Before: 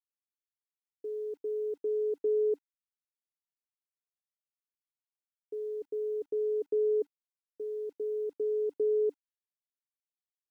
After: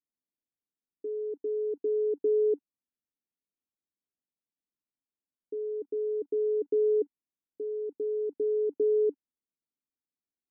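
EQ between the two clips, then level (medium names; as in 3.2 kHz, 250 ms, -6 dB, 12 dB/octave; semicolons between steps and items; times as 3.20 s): Bessel low-pass 530 Hz, order 2; peaking EQ 260 Hz +12 dB 1.1 oct; 0.0 dB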